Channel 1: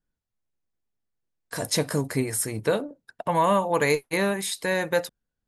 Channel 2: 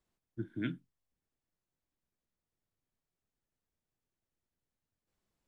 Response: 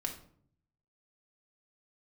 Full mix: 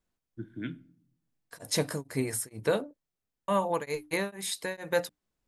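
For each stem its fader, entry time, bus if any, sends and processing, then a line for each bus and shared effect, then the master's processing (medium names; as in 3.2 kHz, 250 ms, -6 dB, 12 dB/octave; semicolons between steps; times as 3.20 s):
-3.0 dB, 0.00 s, muted 2.97–3.48 s, no send, hum notches 60/120/180/240/300 Hz; tremolo of two beating tones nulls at 2.2 Hz
-2.5 dB, 0.00 s, send -12 dB, none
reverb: on, RT60 0.60 s, pre-delay 4 ms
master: none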